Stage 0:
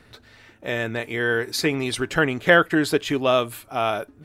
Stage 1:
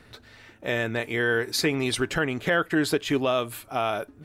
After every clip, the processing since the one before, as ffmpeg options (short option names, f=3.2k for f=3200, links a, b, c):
-af "alimiter=limit=-13dB:level=0:latency=1:release=216"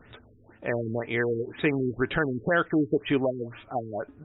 -af "afftfilt=real='re*lt(b*sr/1024,440*pow(3900/440,0.5+0.5*sin(2*PI*2*pts/sr)))':imag='im*lt(b*sr/1024,440*pow(3900/440,0.5+0.5*sin(2*PI*2*pts/sr)))':win_size=1024:overlap=0.75"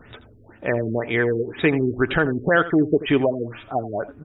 -af "aecho=1:1:83:0.168,volume=6dB"